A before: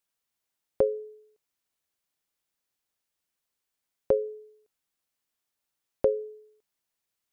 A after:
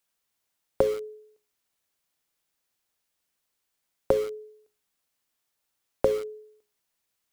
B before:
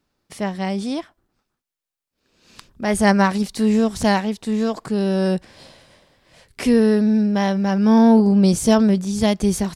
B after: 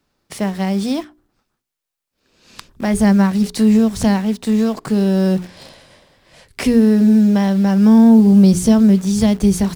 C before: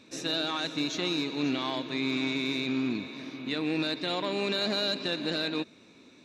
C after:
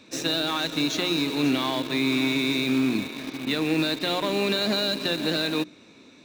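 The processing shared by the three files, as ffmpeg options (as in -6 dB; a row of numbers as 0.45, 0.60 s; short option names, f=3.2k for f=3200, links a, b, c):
-filter_complex "[0:a]bandreject=f=60:t=h:w=6,bandreject=f=120:t=h:w=6,bandreject=f=180:t=h:w=6,bandreject=f=240:t=h:w=6,bandreject=f=300:t=h:w=6,bandreject=f=360:t=h:w=6,bandreject=f=420:t=h:w=6,acrossover=split=270[a][b];[b]acompressor=threshold=-30dB:ratio=3[c];[a][c]amix=inputs=2:normalize=0,asplit=2[d][e];[e]acrusher=bits=5:mix=0:aa=0.000001,volume=-9dB[f];[d][f]amix=inputs=2:normalize=0,volume=4.5dB"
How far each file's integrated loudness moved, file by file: +1.0, +4.0, +5.5 LU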